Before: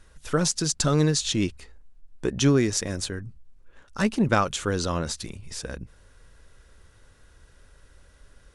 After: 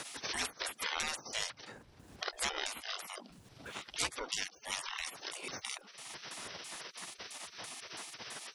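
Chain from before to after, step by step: pitch shift switched off and on -10.5 st, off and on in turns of 166 ms; spectral gate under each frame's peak -30 dB weak; three bands compressed up and down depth 70%; trim +10 dB

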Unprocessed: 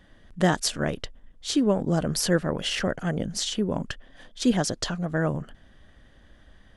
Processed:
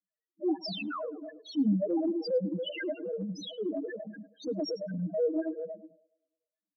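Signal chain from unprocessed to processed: backward echo that repeats 118 ms, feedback 70%, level -6.5 dB; gate -37 dBFS, range -36 dB; steep high-pass 190 Hz 96 dB/octave; comb 6.3 ms, depth 83%; painted sound fall, 0.67–1.01 s, 920–5300 Hz -24 dBFS; in parallel at -2.5 dB: peak limiter -17 dBFS, peak gain reduction 9 dB; on the sum: dynamic bell 3 kHz, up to -3 dB, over -31 dBFS, Q 0.89; flange 1.2 Hz, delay 0.6 ms, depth 2.6 ms, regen +6%; loudest bins only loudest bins 2; transient shaper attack -7 dB, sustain -3 dB; on a send: band-passed feedback delay 104 ms, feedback 48%, band-pass 680 Hz, level -20 dB

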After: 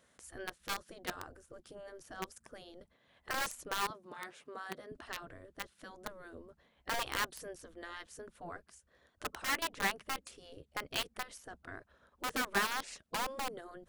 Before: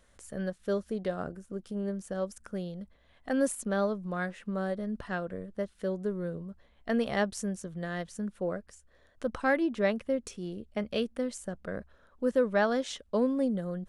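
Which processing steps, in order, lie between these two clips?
in parallel at -6 dB: bit crusher 4-bit; 3.90–4.92 s: on the sum: high-pass 140 Hz 12 dB/octave; spectral gate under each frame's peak -10 dB weak; trim -2 dB

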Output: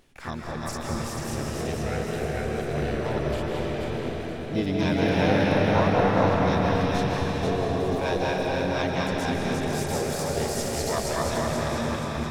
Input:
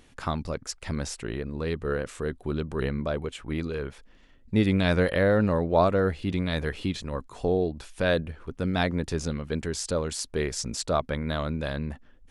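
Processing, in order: backward echo that repeats 241 ms, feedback 68%, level -1 dB; harmony voices +7 st -4 dB; algorithmic reverb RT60 3.6 s, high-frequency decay 0.85×, pre-delay 115 ms, DRR -1.5 dB; trim -6.5 dB

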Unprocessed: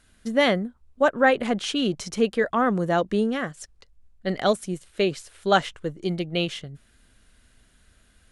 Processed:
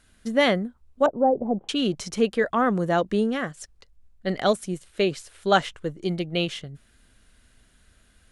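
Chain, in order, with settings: 1.06–1.69 s: Chebyshev low-pass 840 Hz, order 4

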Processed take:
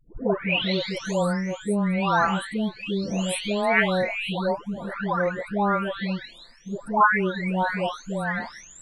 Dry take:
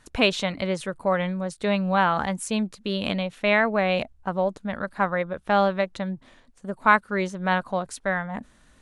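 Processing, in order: delay that grows with frequency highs late, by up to 905 ms; trim +2.5 dB

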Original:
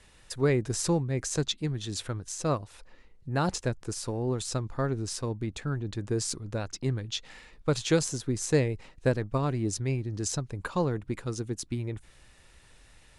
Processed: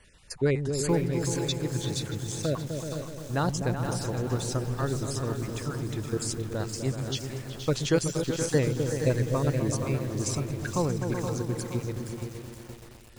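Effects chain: random holes in the spectrogram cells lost 23%; delay with an opening low-pass 126 ms, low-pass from 200 Hz, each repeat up 2 oct, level -3 dB; bit-crushed delay 472 ms, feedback 55%, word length 7-bit, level -8 dB

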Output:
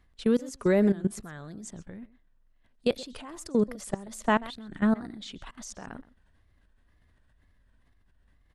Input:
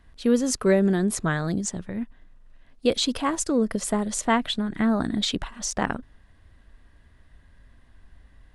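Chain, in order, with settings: level held to a coarse grid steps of 21 dB; delay 128 ms -19 dB; wow and flutter 110 cents

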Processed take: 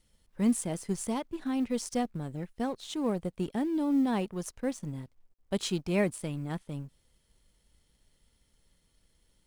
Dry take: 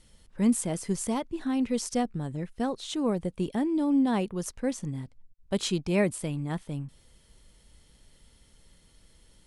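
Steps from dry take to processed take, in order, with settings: companding laws mixed up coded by A; trim -2 dB

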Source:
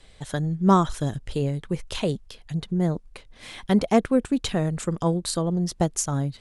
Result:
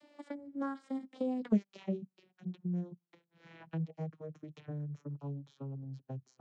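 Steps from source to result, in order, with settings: vocoder on a note that slides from C4, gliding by -11 st; Doppler pass-by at 1.52 s, 40 m/s, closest 2.1 m; three bands compressed up and down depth 70%; trim +12 dB

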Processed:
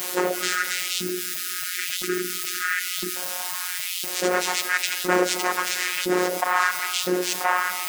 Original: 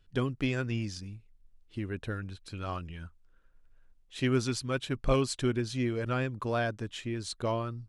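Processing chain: noise-vocoded speech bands 3; peaking EQ 130 Hz -13.5 dB 0.34 oct; in parallel at -7 dB: word length cut 6-bit, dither triangular; on the sum: spectral selection erased 0.35–3.16 s, 430–1200 Hz; LFO high-pass saw up 0.99 Hz 280–3600 Hz; robot voice 181 Hz; feedback echo behind a high-pass 133 ms, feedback 84%, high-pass 2.9 kHz, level -23.5 dB; on a send at -18.5 dB: reverberation RT60 2.0 s, pre-delay 110 ms; on the sum: level flattener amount 50%; trim +3 dB

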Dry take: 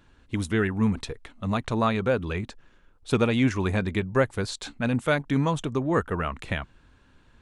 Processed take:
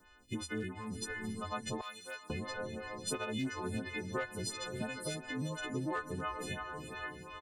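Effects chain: partials quantised in pitch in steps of 3 st; echo that smears into a reverb 457 ms, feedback 48%, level -11.5 dB; hard clipper -14.5 dBFS, distortion -22 dB; 1.81–2.30 s: differentiator; compression, threshold -30 dBFS, peak gain reduction 12 dB; 3.87–4.60 s: echo throw 590 ms, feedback 15%, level -10 dB; lamp-driven phase shifter 2.9 Hz; trim -2 dB

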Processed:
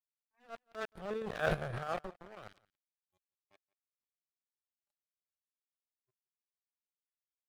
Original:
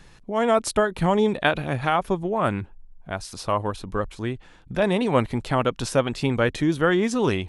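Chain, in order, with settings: spectrogram pixelated in time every 50 ms; Doppler pass-by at 1.57 s, 13 m/s, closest 2.7 m; high-order bell 3.4 kHz -8 dB 1 oct; static phaser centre 1.4 kHz, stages 8; crossover distortion -39.5 dBFS; trance gate "xxxx..x.xxx.xx." 185 bpm -12 dB; transient shaper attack -12 dB, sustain +8 dB; spectral noise reduction 20 dB; delay 173 ms -23.5 dB

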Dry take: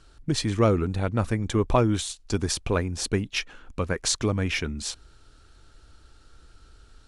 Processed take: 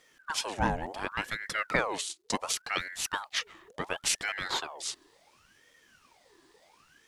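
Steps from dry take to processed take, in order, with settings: bass shelf 370 Hz -11.5 dB; bit crusher 12-bit; 1.99–2.44 s: transient shaper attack +6 dB, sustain -7 dB; ring modulator with a swept carrier 1.1 kHz, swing 70%, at 0.7 Hz

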